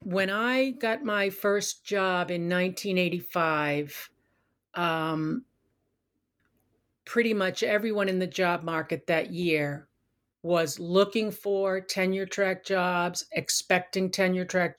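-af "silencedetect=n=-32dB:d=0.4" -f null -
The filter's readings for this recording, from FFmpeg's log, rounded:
silence_start: 4.03
silence_end: 4.76 | silence_duration: 0.73
silence_start: 5.39
silence_end: 7.07 | silence_duration: 1.68
silence_start: 9.77
silence_end: 10.45 | silence_duration: 0.68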